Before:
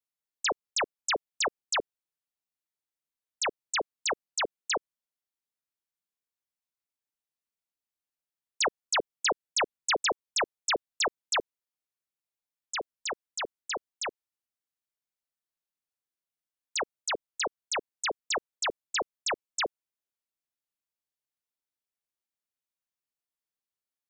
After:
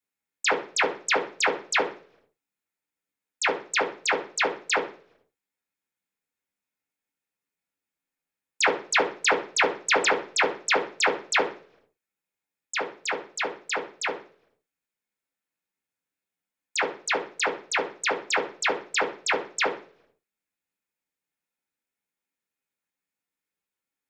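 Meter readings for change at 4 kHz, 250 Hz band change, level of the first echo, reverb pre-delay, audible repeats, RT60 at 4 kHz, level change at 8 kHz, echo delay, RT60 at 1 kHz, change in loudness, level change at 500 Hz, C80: +1.5 dB, +8.5 dB, none, 3 ms, none, 0.50 s, +2.0 dB, none, 0.40 s, +5.5 dB, +6.5 dB, 17.0 dB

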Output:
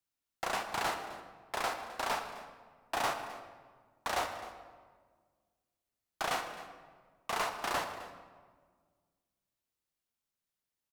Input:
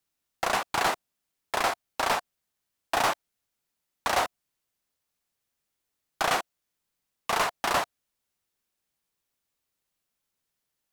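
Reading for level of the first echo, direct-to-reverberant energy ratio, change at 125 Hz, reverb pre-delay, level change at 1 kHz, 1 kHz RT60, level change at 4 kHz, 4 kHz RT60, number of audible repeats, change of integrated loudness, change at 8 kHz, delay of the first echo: -17.0 dB, 6.0 dB, -7.0 dB, 21 ms, -7.5 dB, 1.5 s, -7.5 dB, 0.95 s, 1, -8.0 dB, -8.0 dB, 0.26 s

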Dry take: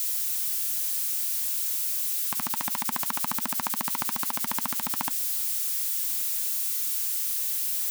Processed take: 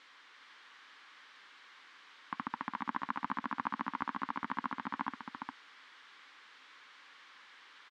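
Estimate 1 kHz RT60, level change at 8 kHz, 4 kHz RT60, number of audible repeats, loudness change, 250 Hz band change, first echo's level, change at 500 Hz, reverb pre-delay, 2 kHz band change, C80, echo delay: none, under -40 dB, none, 1, -14.5 dB, -3.0 dB, -5.5 dB, -8.5 dB, none, -4.5 dB, none, 0.409 s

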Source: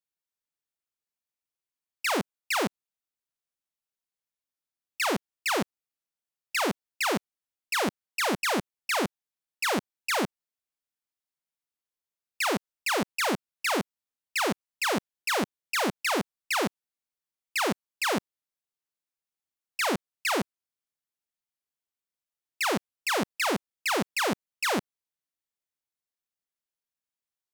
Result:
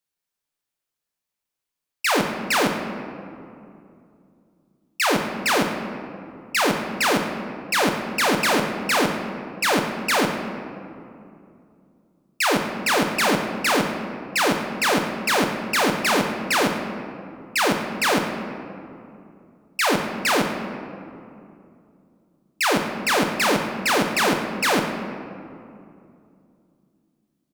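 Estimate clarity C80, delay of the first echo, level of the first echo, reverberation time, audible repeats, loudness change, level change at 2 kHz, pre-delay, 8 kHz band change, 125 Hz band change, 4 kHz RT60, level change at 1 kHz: 6.5 dB, 0.109 s, -14.0 dB, 2.6 s, 1, +7.0 dB, +7.5 dB, 7 ms, +7.0 dB, +8.5 dB, 1.2 s, +8.0 dB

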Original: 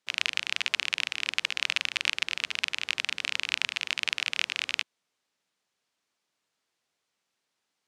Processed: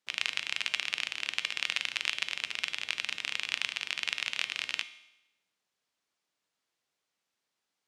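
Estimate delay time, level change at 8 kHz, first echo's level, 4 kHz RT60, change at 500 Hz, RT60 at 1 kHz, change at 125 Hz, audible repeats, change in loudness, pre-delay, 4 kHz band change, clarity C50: none, -3.5 dB, none, 0.90 s, -3.5 dB, 0.90 s, n/a, none, -3.5 dB, 3 ms, -3.5 dB, 15.0 dB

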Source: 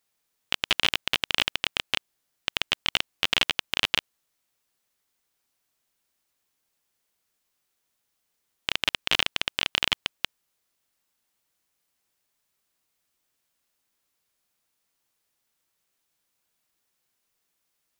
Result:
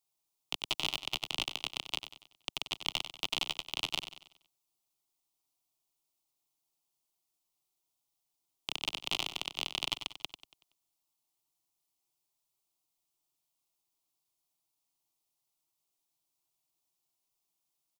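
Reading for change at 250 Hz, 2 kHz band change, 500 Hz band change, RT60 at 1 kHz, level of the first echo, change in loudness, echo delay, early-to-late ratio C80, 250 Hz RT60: -8.5 dB, -12.5 dB, -9.5 dB, none, -10.5 dB, -9.5 dB, 94 ms, none, none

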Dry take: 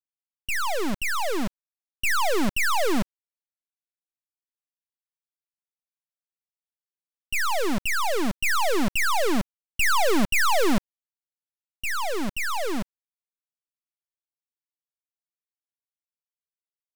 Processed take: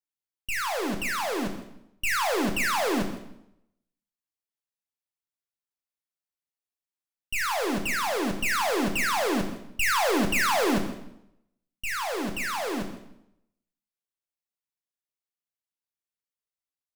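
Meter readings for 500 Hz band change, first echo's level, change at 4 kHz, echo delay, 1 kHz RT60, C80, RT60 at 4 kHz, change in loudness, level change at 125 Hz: -1.5 dB, -16.0 dB, -1.5 dB, 0.161 s, 0.75 s, 10.0 dB, 0.70 s, -1.5 dB, -1.5 dB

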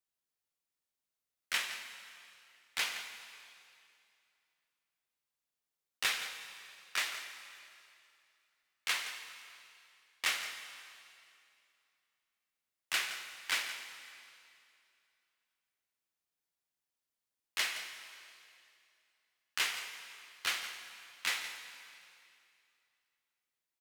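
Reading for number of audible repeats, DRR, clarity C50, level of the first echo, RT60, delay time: 1, 6.0 dB, 6.5 dB, -13.0 dB, 2.6 s, 0.169 s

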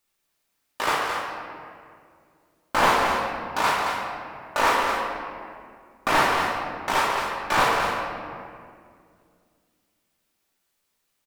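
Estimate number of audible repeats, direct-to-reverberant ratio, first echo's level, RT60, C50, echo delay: 1, -4.5 dB, -7.0 dB, 2.2 s, -0.5 dB, 0.221 s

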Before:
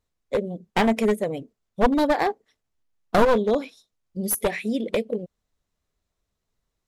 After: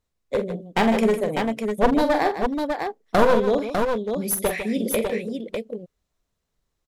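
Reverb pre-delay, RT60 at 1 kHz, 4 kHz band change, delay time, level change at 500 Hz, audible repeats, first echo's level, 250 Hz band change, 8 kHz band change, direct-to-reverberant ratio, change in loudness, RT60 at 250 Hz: none, none, +2.0 dB, 45 ms, +2.0 dB, 3, -8.5 dB, +2.0 dB, +2.0 dB, none, +1.0 dB, none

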